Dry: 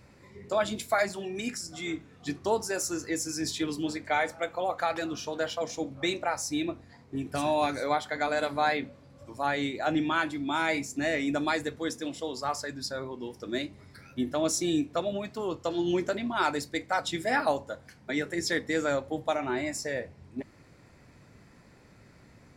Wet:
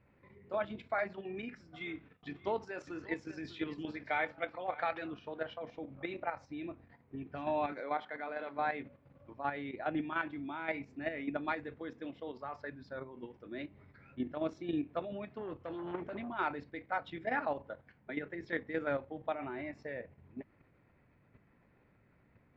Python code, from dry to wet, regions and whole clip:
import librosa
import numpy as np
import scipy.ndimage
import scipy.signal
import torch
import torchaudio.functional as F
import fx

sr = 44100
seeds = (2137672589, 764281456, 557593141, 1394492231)

y = fx.chain(x, sr, fx.gate_hold(open_db=-44.0, close_db=-49.0, hold_ms=71.0, range_db=-21, attack_ms=1.4, release_ms=100.0),
    fx.high_shelf(hz=2200.0, db=9.0),
    fx.echo_single(ms=593, db=-16.5), at=(1.74, 5.08))
y = fx.chain(y, sr, fx.highpass(hz=220.0, slope=12),
    fx.transient(attack_db=-2, sustain_db=2), at=(7.72, 8.58))
y = fx.chain(y, sr, fx.low_shelf(hz=170.0, db=5.0),
    fx.transformer_sat(knee_hz=880.0), at=(15.38, 16.3))
y = scipy.signal.sosfilt(scipy.signal.butter(4, 2800.0, 'lowpass', fs=sr, output='sos'), y)
y = fx.level_steps(y, sr, step_db=9)
y = F.gain(torch.from_numpy(y), -5.0).numpy()